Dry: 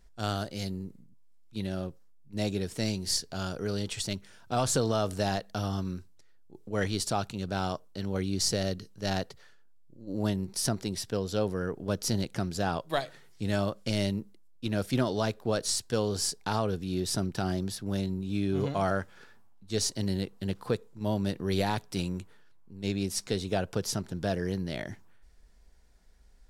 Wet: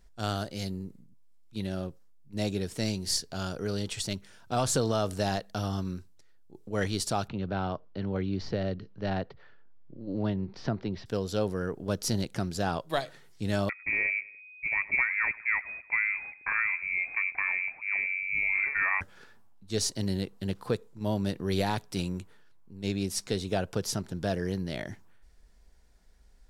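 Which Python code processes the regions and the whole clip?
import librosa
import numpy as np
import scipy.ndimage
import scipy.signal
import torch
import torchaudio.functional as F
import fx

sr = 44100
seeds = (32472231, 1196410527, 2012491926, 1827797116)

y = fx.chain(x, sr, fx.gaussian_blur(sigma=2.6),
    fx.band_squash(depth_pct=40), at=(7.28, 11.06))
y = fx.chain(y, sr, fx.echo_feedback(ms=100, feedback_pct=45, wet_db=-20.5),
    fx.freq_invert(carrier_hz=2500), at=(13.69, 19.01))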